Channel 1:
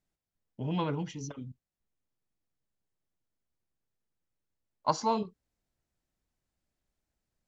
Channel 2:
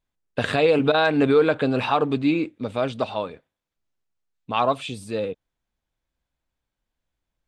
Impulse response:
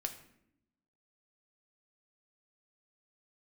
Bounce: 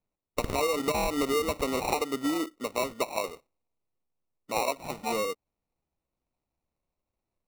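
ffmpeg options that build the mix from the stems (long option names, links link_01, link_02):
-filter_complex "[0:a]lowpass=3700,flanger=delay=9.3:depth=7:regen=65:speed=0.55:shape=triangular,volume=2dB[link_01];[1:a]acrossover=split=280 2400:gain=0.0794 1 0.224[link_02][link_03][link_04];[link_02][link_03][link_04]amix=inputs=3:normalize=0,volume=-1dB,asplit=2[link_05][link_06];[link_06]apad=whole_len=329526[link_07];[link_01][link_07]sidechaincompress=threshold=-34dB:ratio=8:attack=34:release=328[link_08];[link_08][link_05]amix=inputs=2:normalize=0,acrusher=samples=27:mix=1:aa=0.000001,acompressor=threshold=-24dB:ratio=10"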